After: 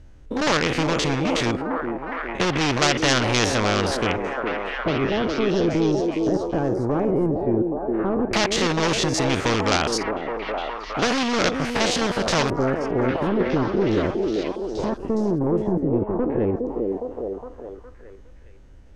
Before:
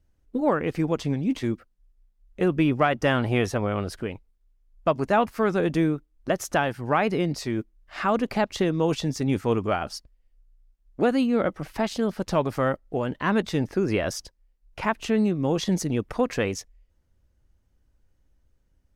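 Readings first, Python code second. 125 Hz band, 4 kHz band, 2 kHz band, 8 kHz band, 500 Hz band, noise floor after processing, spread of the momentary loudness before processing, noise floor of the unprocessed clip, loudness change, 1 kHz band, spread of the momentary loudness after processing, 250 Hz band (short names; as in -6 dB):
+2.0 dB, +11.0 dB, +5.5 dB, +9.0 dB, +3.5 dB, -44 dBFS, 8 LU, -67 dBFS, +3.0 dB, +3.0 dB, 8 LU, +3.0 dB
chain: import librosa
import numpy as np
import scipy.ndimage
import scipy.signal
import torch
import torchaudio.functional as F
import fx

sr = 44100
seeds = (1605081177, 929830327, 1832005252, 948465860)

p1 = fx.spec_steps(x, sr, hold_ms=50)
p2 = fx.peak_eq(p1, sr, hz=5600.0, db=-14.5, octaves=0.9)
p3 = fx.rider(p2, sr, range_db=4, speed_s=2.0)
p4 = p2 + F.gain(torch.from_numpy(p3), 2.5).numpy()
p5 = np.clip(10.0 ** (15.0 / 20.0) * p4, -1.0, 1.0) / 10.0 ** (15.0 / 20.0)
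p6 = fx.filter_lfo_lowpass(p5, sr, shape='square', hz=0.12, low_hz=370.0, high_hz=5900.0, q=3.0)
p7 = p6 + fx.echo_stepped(p6, sr, ms=412, hz=380.0, octaves=0.7, feedback_pct=70, wet_db=-3, dry=0)
y = fx.spectral_comp(p7, sr, ratio=2.0)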